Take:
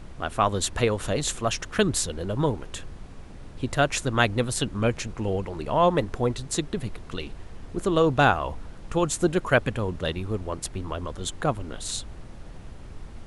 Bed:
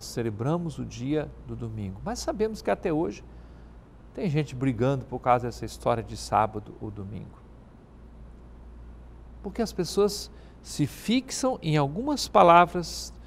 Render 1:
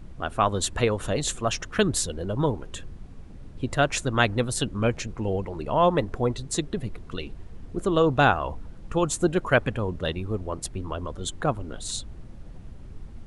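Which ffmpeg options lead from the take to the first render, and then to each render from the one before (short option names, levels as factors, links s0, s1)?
-af "afftdn=nr=8:nf=-42"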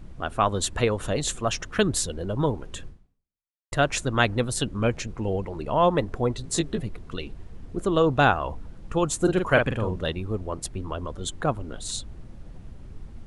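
-filter_complex "[0:a]asettb=1/sr,asplit=3[s0][s1][s2];[s0]atrim=end=6.424[s3];[s1]atrim=start=6.42:end=6.82,asetpts=PTS-STARTPTS,afade=t=in:d=0.004:c=qsin,afade=t=out:st=0.396:d=0.004:c=qsin,asplit=2[s4][s5];[s5]adelay=18,volume=0.708[s6];[s4][s6]amix=inputs=2:normalize=0,atrim=end_sample=17640[s7];[s2]atrim=start=6.816[s8];[s3][s7]acrossfade=d=0.004:c1=hsin:c2=qsin[s9];[s9][s8]acrossfade=d=0.004:c1=qsin:c2=hsin,asettb=1/sr,asplit=3[s10][s11][s12];[s10]atrim=end=9.204[s13];[s11]atrim=start=9.2:end=10.04,asetpts=PTS-STARTPTS,afade=t=in:d=0.004:c=qsin,afade=t=out:st=0.836:d=0.004:c=qsin,asplit=2[s14][s15];[s15]adelay=44,volume=0.562[s16];[s14][s16]amix=inputs=2:normalize=0,atrim=end_sample=37044[s17];[s12]atrim=start=10.036[s18];[s13][s17]acrossfade=d=0.004:c1=hsin:c2=qsin[s19];[s19][s18]acrossfade=d=0.004:c1=qsin:c2=hsin,asplit=2[s20][s21];[s20]atrim=end=3.72,asetpts=PTS-STARTPTS,afade=t=out:st=2.87:d=0.85:c=exp[s22];[s21]atrim=start=3.72,asetpts=PTS-STARTPTS,afade=t=in:d=0.004:c=hsin[s23];[s22][s23]concat=n=2:v=0:a=1"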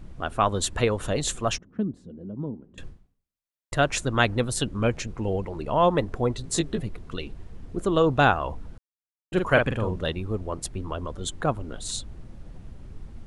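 -filter_complex "[0:a]asettb=1/sr,asplit=3[s0][s1][s2];[s0]atrim=end=1.584[s3];[s1]atrim=start=1.58:end=2.78,asetpts=PTS-STARTPTS,afade=t=in:d=0.004:c=qsin,afade=t=out:st=1.196:d=0.004:c=qsin,bandpass=f=220:t=q:w=2.6[s4];[s2]atrim=start=2.776[s5];[s3][s4]acrossfade=d=0.004:c1=hsin:c2=qsin[s6];[s6][s5]acrossfade=d=0.004:c1=qsin:c2=hsin,asplit=3[s7][s8][s9];[s7]atrim=end=8.78,asetpts=PTS-STARTPTS,afade=t=out:st=8.776:d=0.004:c=hsin[s10];[s8]atrim=start=8.78:end=9.32,asetpts=PTS-STARTPTS,volume=0[s11];[s9]atrim=start=9.32,asetpts=PTS-STARTPTS,afade=t=in:d=0.004:c=hsin[s12];[s10][s11][s12]concat=n=3:v=0:a=1"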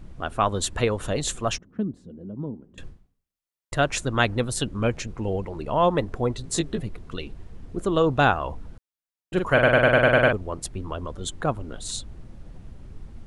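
-filter_complex "[0:a]asplit=9[s0][s1][s2][s3][s4][s5][s6][s7][s8];[s0]atrim=end=9.632[s9];[s1]atrim=start=9.528:end=9.632[s10];[s2]atrim=start=9.528:end=9.632[s11];[s3]atrim=start=9.528:end=9.632[s12];[s4]atrim=start=9.528:end=9.632[s13];[s5]atrim=start=9.528:end=9.632[s14];[s6]atrim=start=9.528:end=9.632[s15];[s7]atrim=start=9.528:end=9.632[s16];[s8]atrim=start=10.328[s17];[s9][s10]acrossfade=d=0.004:c1=hsin:c2=hsin[s18];[s18][s11]acrossfade=d=0.004:c1=hsin:c2=hsin[s19];[s19][s12]acrossfade=d=0.004:c1=hsin:c2=hsin[s20];[s20][s13]acrossfade=d=0.004:c1=hsin:c2=hsin[s21];[s21][s14]acrossfade=d=0.004:c1=hsin:c2=hsin[s22];[s22][s15]acrossfade=d=0.004:c1=hsin:c2=hsin[s23];[s23][s16]acrossfade=d=0.004:c1=hsin:c2=hsin[s24];[s24][s17]acrossfade=d=0.004:c1=hsin:c2=hsin"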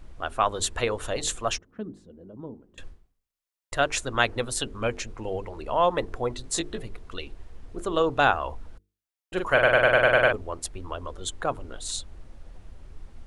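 -af "equalizer=f=160:t=o:w=1.8:g=-10.5,bandreject=f=50:t=h:w=6,bandreject=f=100:t=h:w=6,bandreject=f=150:t=h:w=6,bandreject=f=200:t=h:w=6,bandreject=f=250:t=h:w=6,bandreject=f=300:t=h:w=6,bandreject=f=350:t=h:w=6,bandreject=f=400:t=h:w=6,bandreject=f=450:t=h:w=6"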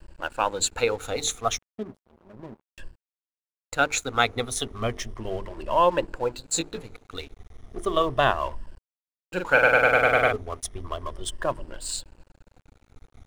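-af "afftfilt=real='re*pow(10,12/40*sin(2*PI*(1.3*log(max(b,1)*sr/1024/100)/log(2)-(-0.34)*(pts-256)/sr)))':imag='im*pow(10,12/40*sin(2*PI*(1.3*log(max(b,1)*sr/1024/100)/log(2)-(-0.34)*(pts-256)/sr)))':win_size=1024:overlap=0.75,aeval=exprs='sgn(val(0))*max(abs(val(0))-0.00596,0)':c=same"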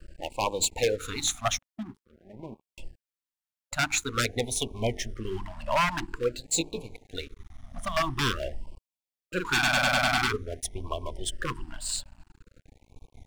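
-af "aeval=exprs='0.141*(abs(mod(val(0)/0.141+3,4)-2)-1)':c=same,afftfilt=real='re*(1-between(b*sr/1024,380*pow(1600/380,0.5+0.5*sin(2*PI*0.48*pts/sr))/1.41,380*pow(1600/380,0.5+0.5*sin(2*PI*0.48*pts/sr))*1.41))':imag='im*(1-between(b*sr/1024,380*pow(1600/380,0.5+0.5*sin(2*PI*0.48*pts/sr))/1.41,380*pow(1600/380,0.5+0.5*sin(2*PI*0.48*pts/sr))*1.41))':win_size=1024:overlap=0.75"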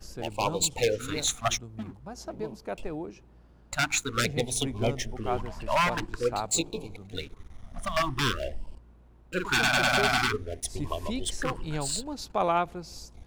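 -filter_complex "[1:a]volume=0.335[s0];[0:a][s0]amix=inputs=2:normalize=0"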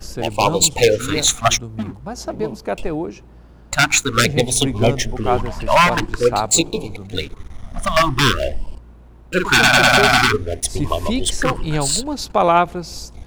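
-af "volume=3.98,alimiter=limit=0.708:level=0:latency=1"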